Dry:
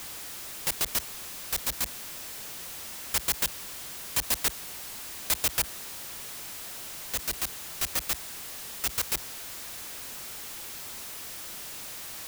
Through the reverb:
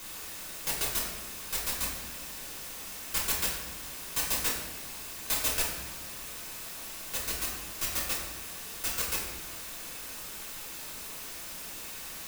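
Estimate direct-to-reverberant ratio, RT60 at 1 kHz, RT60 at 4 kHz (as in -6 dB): -4.5 dB, 0.95 s, 0.75 s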